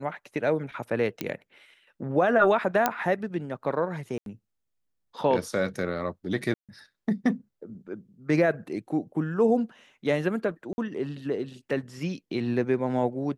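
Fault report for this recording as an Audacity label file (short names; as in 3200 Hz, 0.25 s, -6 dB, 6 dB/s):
1.210000	1.210000	pop -14 dBFS
2.860000	2.860000	pop -7 dBFS
4.180000	4.260000	gap 82 ms
6.540000	6.690000	gap 0.147 s
10.730000	10.780000	gap 51 ms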